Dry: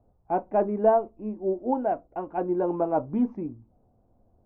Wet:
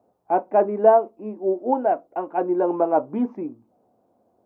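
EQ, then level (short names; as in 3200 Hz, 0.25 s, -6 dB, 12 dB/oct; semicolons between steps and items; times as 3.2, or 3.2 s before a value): HPF 300 Hz 12 dB/oct; +6.0 dB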